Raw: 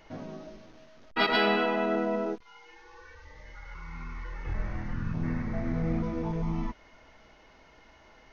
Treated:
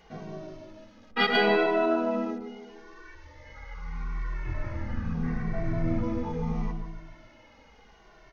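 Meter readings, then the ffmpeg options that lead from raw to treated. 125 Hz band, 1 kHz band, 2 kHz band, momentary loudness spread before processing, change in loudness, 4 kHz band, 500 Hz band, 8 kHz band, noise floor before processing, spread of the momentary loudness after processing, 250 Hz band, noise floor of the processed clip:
+1.0 dB, +1.0 dB, +2.0 dB, 20 LU, +1.5 dB, +1.0 dB, +3.0 dB, no reading, -57 dBFS, 21 LU, +1.5 dB, -56 dBFS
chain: -filter_complex "[0:a]asplit=2[s0][s1];[s1]adelay=148,lowpass=f=920:p=1,volume=0.531,asplit=2[s2][s3];[s3]adelay=148,lowpass=f=920:p=1,volume=0.53,asplit=2[s4][s5];[s5]adelay=148,lowpass=f=920:p=1,volume=0.53,asplit=2[s6][s7];[s7]adelay=148,lowpass=f=920:p=1,volume=0.53,asplit=2[s8][s9];[s9]adelay=148,lowpass=f=920:p=1,volume=0.53,asplit=2[s10][s11];[s11]adelay=148,lowpass=f=920:p=1,volume=0.53,asplit=2[s12][s13];[s13]adelay=148,lowpass=f=920:p=1,volume=0.53[s14];[s0][s2][s4][s6][s8][s10][s12][s14]amix=inputs=8:normalize=0,asplit=2[s15][s16];[s16]adelay=2.1,afreqshift=-0.76[s17];[s15][s17]amix=inputs=2:normalize=1,volume=1.5"

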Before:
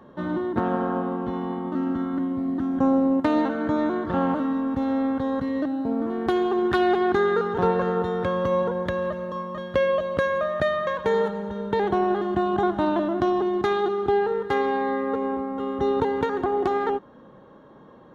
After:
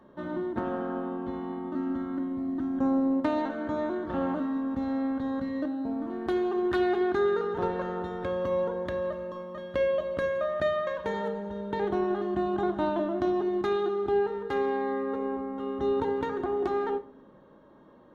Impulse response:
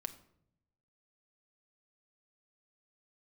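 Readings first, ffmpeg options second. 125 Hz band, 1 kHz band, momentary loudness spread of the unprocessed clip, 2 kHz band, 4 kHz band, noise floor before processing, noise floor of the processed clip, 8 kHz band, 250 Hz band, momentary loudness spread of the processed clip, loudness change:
-8.0 dB, -7.5 dB, 7 LU, -7.0 dB, -7.0 dB, -49 dBFS, -54 dBFS, no reading, -5.0 dB, 7 LU, -5.5 dB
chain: -filter_complex "[1:a]atrim=start_sample=2205,asetrate=74970,aresample=44100[s0];[0:a][s0]afir=irnorm=-1:irlink=0"

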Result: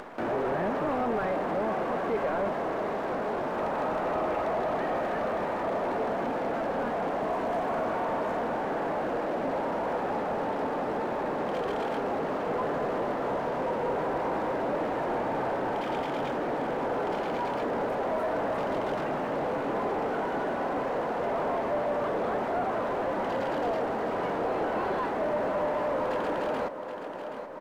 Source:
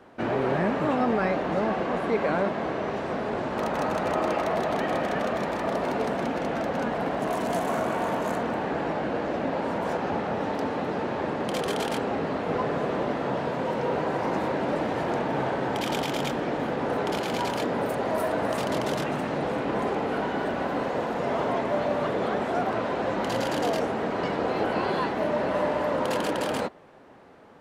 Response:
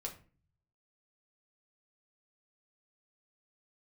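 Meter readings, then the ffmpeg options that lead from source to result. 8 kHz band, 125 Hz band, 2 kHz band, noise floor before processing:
under -10 dB, -7.0 dB, -4.0 dB, -31 dBFS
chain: -filter_complex "[0:a]acrusher=bits=7:dc=4:mix=0:aa=0.000001,asplit=2[s0][s1];[s1]aecho=0:1:776|1552|2328|3104:0.188|0.0735|0.0287|0.0112[s2];[s0][s2]amix=inputs=2:normalize=0,asplit=2[s3][s4];[s4]highpass=f=720:p=1,volume=8.91,asoftclip=type=tanh:threshold=0.251[s5];[s3][s5]amix=inputs=2:normalize=0,lowpass=f=1100:p=1,volume=0.501,highshelf=f=2900:g=-8,acompressor=mode=upward:threshold=0.0562:ratio=2.5,volume=0.473"

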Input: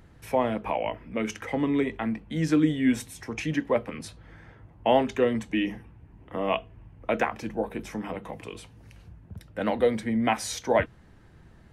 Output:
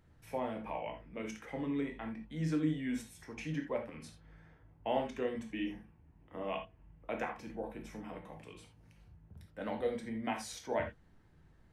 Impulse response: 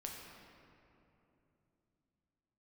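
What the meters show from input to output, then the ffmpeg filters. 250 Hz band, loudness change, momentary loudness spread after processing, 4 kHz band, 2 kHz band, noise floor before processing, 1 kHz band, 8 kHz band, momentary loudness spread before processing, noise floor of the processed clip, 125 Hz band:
-11.5 dB, -11.5 dB, 16 LU, -12.0 dB, -12.0 dB, -53 dBFS, -11.5 dB, -12.5 dB, 16 LU, -64 dBFS, -8.5 dB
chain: -filter_complex "[1:a]atrim=start_sample=2205,atrim=end_sample=3969[s0];[0:a][s0]afir=irnorm=-1:irlink=0,volume=0.398"

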